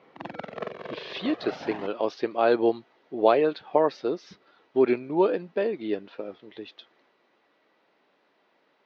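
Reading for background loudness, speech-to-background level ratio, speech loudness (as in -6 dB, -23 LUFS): -39.0 LUFS, 13.0 dB, -26.0 LUFS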